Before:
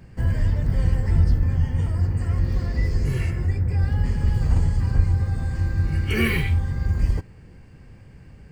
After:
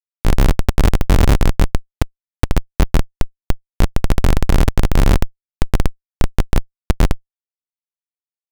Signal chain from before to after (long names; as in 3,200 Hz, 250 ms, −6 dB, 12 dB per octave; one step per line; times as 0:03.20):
spectral tilt −3.5 dB per octave
comparator with hysteresis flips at −1.5 dBFS
level −2 dB